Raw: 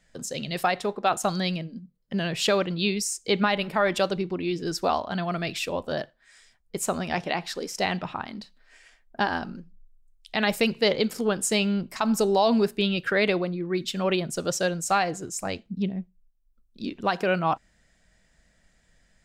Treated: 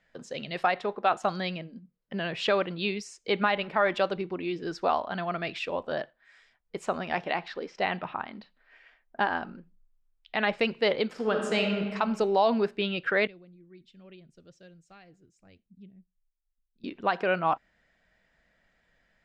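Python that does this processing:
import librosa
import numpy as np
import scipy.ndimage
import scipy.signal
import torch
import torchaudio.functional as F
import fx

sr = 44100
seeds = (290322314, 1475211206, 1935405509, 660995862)

y = fx.lowpass(x, sr, hz=4200.0, slope=12, at=(7.48, 10.59))
y = fx.reverb_throw(y, sr, start_s=11.11, length_s=0.68, rt60_s=1.6, drr_db=2.5)
y = fx.tone_stack(y, sr, knobs='10-0-1', at=(13.27, 16.84))
y = scipy.signal.sosfilt(scipy.signal.butter(2, 2800.0, 'lowpass', fs=sr, output='sos'), y)
y = fx.low_shelf(y, sr, hz=240.0, db=-11.5)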